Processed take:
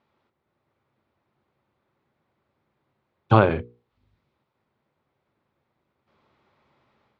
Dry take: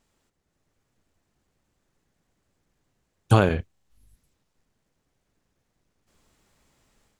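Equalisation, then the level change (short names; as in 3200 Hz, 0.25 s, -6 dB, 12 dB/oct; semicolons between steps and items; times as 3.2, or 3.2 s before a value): speaker cabinet 160–3800 Hz, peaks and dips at 180 Hz -10 dB, 280 Hz -9 dB, 460 Hz -6 dB, 690 Hz -5 dB, 1700 Hz -6 dB, 2900 Hz -5 dB; high shelf 2400 Hz -10.5 dB; notches 60/120/180/240/300/360/420/480 Hz; +8.5 dB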